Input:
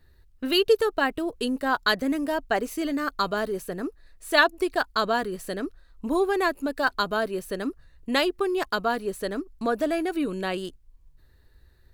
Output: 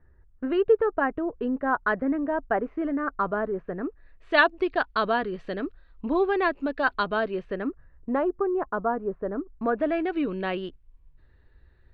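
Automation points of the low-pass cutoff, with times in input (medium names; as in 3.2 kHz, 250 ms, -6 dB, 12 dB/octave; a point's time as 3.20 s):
low-pass 24 dB/octave
3.63 s 1.7 kHz
4.37 s 3.4 kHz
7.30 s 3.4 kHz
8.15 s 1.3 kHz
9.29 s 1.3 kHz
10.03 s 3.1 kHz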